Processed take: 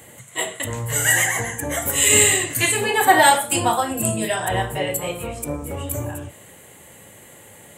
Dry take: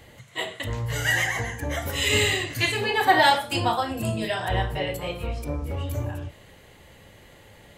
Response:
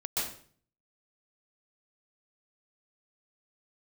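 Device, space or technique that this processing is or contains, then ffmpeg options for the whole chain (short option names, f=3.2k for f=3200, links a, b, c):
budget condenser microphone: -af "highpass=120,highshelf=f=6.4k:t=q:w=3:g=8.5,volume=4.5dB"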